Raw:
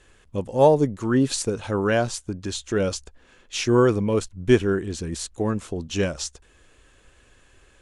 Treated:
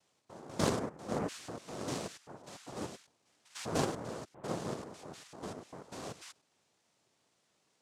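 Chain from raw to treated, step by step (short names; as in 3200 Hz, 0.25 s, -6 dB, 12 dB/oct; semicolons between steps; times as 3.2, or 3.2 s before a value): stepped spectrum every 0.1 s; noise vocoder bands 2; dynamic EQ 850 Hz, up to -7 dB, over -37 dBFS, Q 2; added harmonics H 3 -18 dB, 7 -31 dB, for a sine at -2.5 dBFS; gain -8 dB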